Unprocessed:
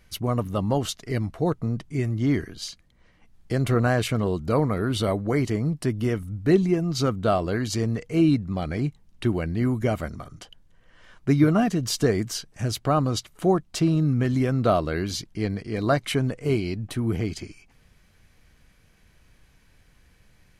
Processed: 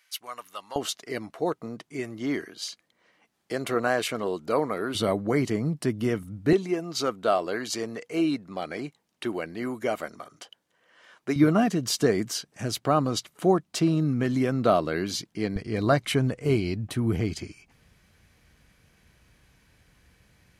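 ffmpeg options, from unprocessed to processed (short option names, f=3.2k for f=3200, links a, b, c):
-af "asetnsamples=n=441:p=0,asendcmd='0.76 highpass f 350;4.95 highpass f 150;6.53 highpass f 380;11.36 highpass f 170;15.56 highpass f 52',highpass=1.4k"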